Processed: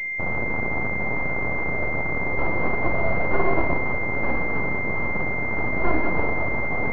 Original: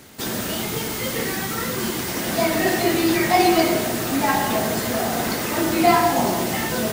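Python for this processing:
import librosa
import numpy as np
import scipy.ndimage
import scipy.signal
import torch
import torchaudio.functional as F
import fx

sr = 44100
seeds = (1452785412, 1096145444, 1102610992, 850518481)

y = fx.rattle_buzz(x, sr, strikes_db=-36.0, level_db=-12.0)
y = fx.highpass(y, sr, hz=330.0, slope=12, at=(4.05, 6.14))
y = np.abs(y)
y = fx.pwm(y, sr, carrier_hz=2100.0)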